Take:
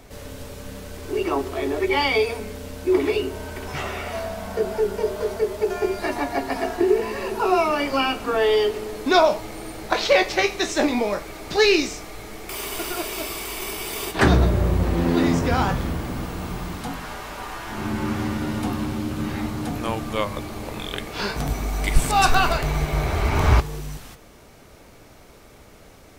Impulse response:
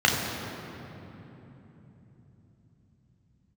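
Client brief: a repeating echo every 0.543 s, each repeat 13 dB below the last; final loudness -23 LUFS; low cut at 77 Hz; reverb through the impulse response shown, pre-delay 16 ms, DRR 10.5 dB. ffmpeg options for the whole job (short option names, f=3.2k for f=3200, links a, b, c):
-filter_complex "[0:a]highpass=77,aecho=1:1:543|1086|1629:0.224|0.0493|0.0108,asplit=2[a][b];[1:a]atrim=start_sample=2205,adelay=16[c];[b][c]afir=irnorm=-1:irlink=0,volume=-28.5dB[d];[a][d]amix=inputs=2:normalize=0"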